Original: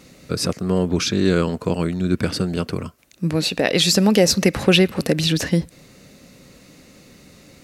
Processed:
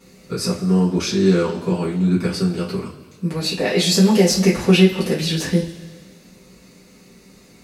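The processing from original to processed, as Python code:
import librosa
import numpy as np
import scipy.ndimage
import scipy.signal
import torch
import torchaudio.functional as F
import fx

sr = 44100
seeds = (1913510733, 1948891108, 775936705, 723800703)

y = fx.rev_double_slope(x, sr, seeds[0], early_s=0.26, late_s=1.7, knee_db=-18, drr_db=-9.0)
y = y * librosa.db_to_amplitude(-10.5)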